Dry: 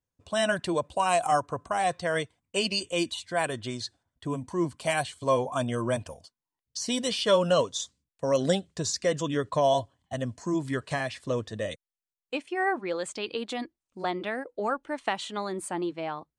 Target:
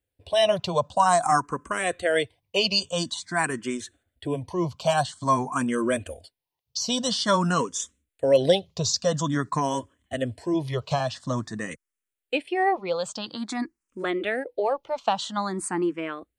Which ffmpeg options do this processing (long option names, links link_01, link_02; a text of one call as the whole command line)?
ffmpeg -i in.wav -filter_complex "[0:a]asplit=2[link_01][link_02];[link_02]afreqshift=0.49[link_03];[link_01][link_03]amix=inputs=2:normalize=1,volume=7dB" out.wav